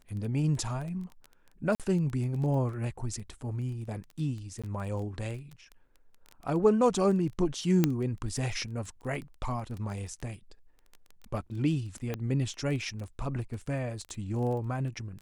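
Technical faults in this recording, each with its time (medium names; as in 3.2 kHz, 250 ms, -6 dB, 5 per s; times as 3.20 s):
crackle 10 per s -36 dBFS
1.75–1.80 s: dropout 47 ms
4.62–4.64 s: dropout 16 ms
7.84 s: pop -10 dBFS
12.14 s: pop -19 dBFS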